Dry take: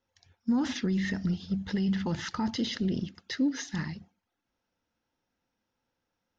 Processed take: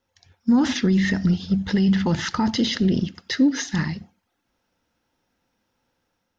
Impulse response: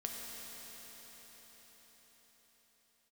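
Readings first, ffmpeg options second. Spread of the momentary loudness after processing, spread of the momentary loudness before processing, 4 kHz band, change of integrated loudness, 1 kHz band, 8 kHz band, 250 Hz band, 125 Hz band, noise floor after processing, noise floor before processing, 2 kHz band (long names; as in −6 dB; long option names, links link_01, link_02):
7 LU, 7 LU, +9.5 dB, +9.5 dB, +9.5 dB, can't be measured, +9.5 dB, +9.5 dB, −76 dBFS, −84 dBFS, +9.5 dB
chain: -filter_complex "[0:a]dynaudnorm=framelen=150:gausssize=5:maxgain=3.5dB,asplit=2[link_01][link_02];[1:a]atrim=start_sample=2205,atrim=end_sample=4410[link_03];[link_02][link_03]afir=irnorm=-1:irlink=0,volume=-12dB[link_04];[link_01][link_04]amix=inputs=2:normalize=0,volume=4.5dB"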